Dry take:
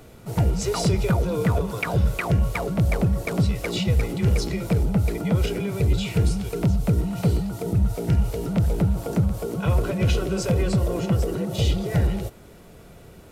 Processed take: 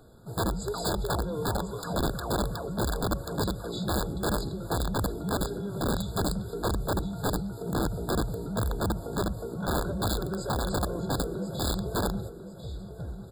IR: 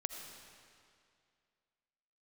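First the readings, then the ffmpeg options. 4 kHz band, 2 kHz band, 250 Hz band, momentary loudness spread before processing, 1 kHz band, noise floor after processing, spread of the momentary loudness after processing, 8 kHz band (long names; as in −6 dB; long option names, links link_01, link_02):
−2.0 dB, −5.0 dB, −6.5 dB, 3 LU, +1.0 dB, −42 dBFS, 4 LU, −1.0 dB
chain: -af "aecho=1:1:1046|2092|3138|4184:0.316|0.101|0.0324|0.0104,aeval=exprs='(mod(5.31*val(0)+1,2)-1)/5.31':channel_layout=same,afftfilt=real='re*eq(mod(floor(b*sr/1024/1700),2),0)':imag='im*eq(mod(floor(b*sr/1024/1700),2),0)':win_size=1024:overlap=0.75,volume=-7.5dB"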